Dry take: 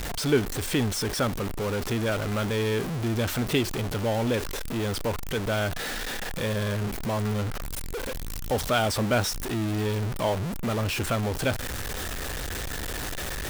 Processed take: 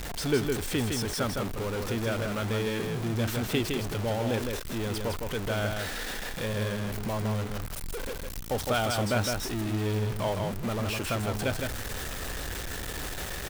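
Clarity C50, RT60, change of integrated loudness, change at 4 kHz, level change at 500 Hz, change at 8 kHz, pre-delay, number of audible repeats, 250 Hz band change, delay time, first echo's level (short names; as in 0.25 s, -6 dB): none, none, -2.5 dB, -2.5 dB, -2.5 dB, -2.5 dB, none, 1, -2.5 dB, 0.16 s, -4.5 dB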